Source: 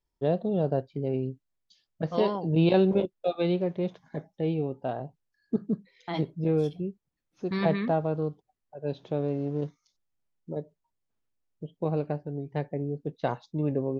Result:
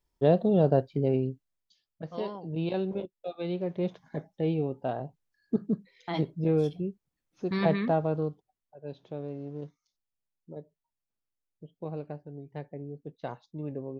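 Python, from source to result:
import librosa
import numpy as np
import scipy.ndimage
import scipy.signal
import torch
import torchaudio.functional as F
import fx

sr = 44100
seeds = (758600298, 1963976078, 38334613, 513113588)

y = fx.gain(x, sr, db=fx.line((1.05, 4.0), (2.02, -9.0), (3.35, -9.0), (3.85, 0.0), (8.18, 0.0), (8.83, -8.5)))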